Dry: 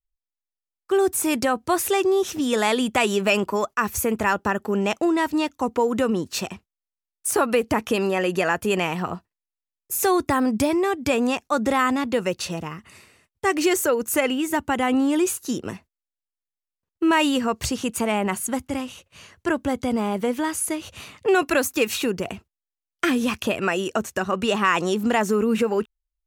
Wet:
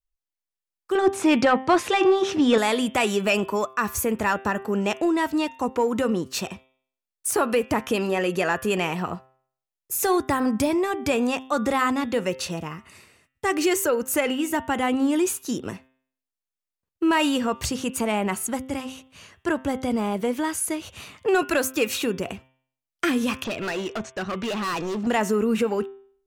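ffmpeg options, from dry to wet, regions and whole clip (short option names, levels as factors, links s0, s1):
-filter_complex "[0:a]asettb=1/sr,asplit=3[s0][s1][s2];[s0]atrim=end=0.954[s3];[s1]atrim=start=0.95:end=2.58,asetpts=PTS-STARTPTS,afade=t=in:d=0.004:c=qsin,afade=t=out:st=1.626:d=0.004:c=qsin,bandreject=f=400:w=12,acontrast=76,highpass=110,lowpass=3900[s4];[s2]atrim=start=2.576[s5];[s3][s4]acrossfade=d=0.004:c1=hsin:c2=qsin[s6];[s6][s5]acrossfade=d=0.004:c1=qsin:c2=hsin,asettb=1/sr,asplit=3[s7][s8][s9];[s7]atrim=end=23.444[s10];[s8]atrim=start=23.44:end=25.07,asetpts=PTS-STARTPTS,afade=t=in:d=0.004:c=qsin,afade=t=out:st=1.626:d=0.004:c=qsin,agate=range=0.0224:threshold=0.0178:ratio=3:release=100:detection=peak,lowpass=f=6300:w=0.5412,lowpass=f=6300:w=1.3066,volume=15.8,asoftclip=hard,volume=0.0631[s11];[s9]atrim=start=25.066[s12];[s10][s11]acrossfade=d=0.004:c1=hsin:c2=qsin[s13];[s13][s12]acrossfade=d=0.004:c1=qsin:c2=hsin,acontrast=57,bandreject=f=130.8:t=h:w=4,bandreject=f=261.6:t=h:w=4,bandreject=f=392.4:t=h:w=4,bandreject=f=523.2:t=h:w=4,bandreject=f=654:t=h:w=4,bandreject=f=784.8:t=h:w=4,bandreject=f=915.6:t=h:w=4,bandreject=f=1046.4:t=h:w=4,bandreject=f=1177.2:t=h:w=4,bandreject=f=1308:t=h:w=4,bandreject=f=1438.8:t=h:w=4,bandreject=f=1569.6:t=h:w=4,bandreject=f=1700.4:t=h:w=4,bandreject=f=1831.2:t=h:w=4,bandreject=f=1962:t=h:w=4,bandreject=f=2092.8:t=h:w=4,bandreject=f=2223.6:t=h:w=4,bandreject=f=2354.4:t=h:w=4,bandreject=f=2485.2:t=h:w=4,bandreject=f=2616:t=h:w=4,bandreject=f=2746.8:t=h:w=4,bandreject=f=2877.6:t=h:w=4,bandreject=f=3008.4:t=h:w=4,bandreject=f=3139.2:t=h:w=4,bandreject=f=3270:t=h:w=4,bandreject=f=3400.8:t=h:w=4,bandreject=f=3531.6:t=h:w=4,bandreject=f=3662.4:t=h:w=4,volume=0.447"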